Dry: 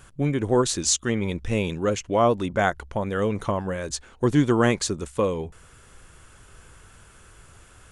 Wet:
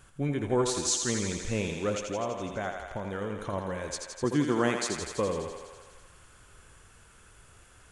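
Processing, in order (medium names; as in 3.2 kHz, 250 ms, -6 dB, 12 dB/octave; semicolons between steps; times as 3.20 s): 2.08–3.53 s: compression 3:1, threshold -26 dBFS, peak gain reduction 9 dB; 4.24–4.96 s: high-pass 150 Hz; on a send: thinning echo 83 ms, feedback 77%, high-pass 330 Hz, level -5.5 dB; on the sum: trim -6.5 dB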